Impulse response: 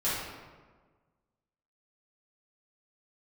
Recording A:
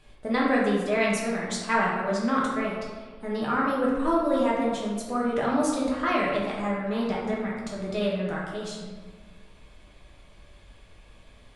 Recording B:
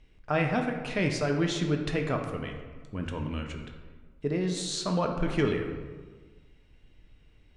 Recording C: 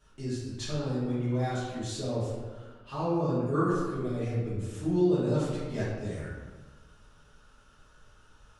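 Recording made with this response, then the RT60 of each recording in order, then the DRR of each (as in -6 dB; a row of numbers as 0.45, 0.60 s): C; 1.4, 1.4, 1.4 s; -5.0, 3.0, -12.0 dB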